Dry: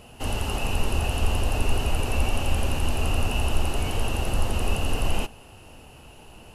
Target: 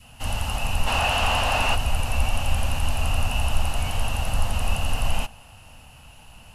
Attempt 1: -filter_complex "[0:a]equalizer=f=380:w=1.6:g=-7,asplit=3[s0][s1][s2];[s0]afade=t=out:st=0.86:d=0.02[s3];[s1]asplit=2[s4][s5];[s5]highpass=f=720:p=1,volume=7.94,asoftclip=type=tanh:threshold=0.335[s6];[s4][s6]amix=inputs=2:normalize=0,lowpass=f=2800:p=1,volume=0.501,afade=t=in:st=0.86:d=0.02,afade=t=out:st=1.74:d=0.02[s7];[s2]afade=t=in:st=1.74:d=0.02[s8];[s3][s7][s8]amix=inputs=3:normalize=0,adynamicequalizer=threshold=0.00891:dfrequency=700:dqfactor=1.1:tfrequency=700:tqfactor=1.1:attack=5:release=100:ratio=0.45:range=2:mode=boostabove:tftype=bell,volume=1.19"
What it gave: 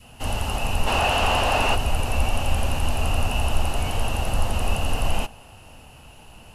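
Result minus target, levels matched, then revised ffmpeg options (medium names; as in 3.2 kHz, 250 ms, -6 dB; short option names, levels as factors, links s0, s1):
500 Hz band +3.5 dB
-filter_complex "[0:a]equalizer=f=380:w=1.6:g=-18.5,asplit=3[s0][s1][s2];[s0]afade=t=out:st=0.86:d=0.02[s3];[s1]asplit=2[s4][s5];[s5]highpass=f=720:p=1,volume=7.94,asoftclip=type=tanh:threshold=0.335[s6];[s4][s6]amix=inputs=2:normalize=0,lowpass=f=2800:p=1,volume=0.501,afade=t=in:st=0.86:d=0.02,afade=t=out:st=1.74:d=0.02[s7];[s2]afade=t=in:st=1.74:d=0.02[s8];[s3][s7][s8]amix=inputs=3:normalize=0,adynamicequalizer=threshold=0.00891:dfrequency=700:dqfactor=1.1:tfrequency=700:tqfactor=1.1:attack=5:release=100:ratio=0.45:range=2:mode=boostabove:tftype=bell,volume=1.19"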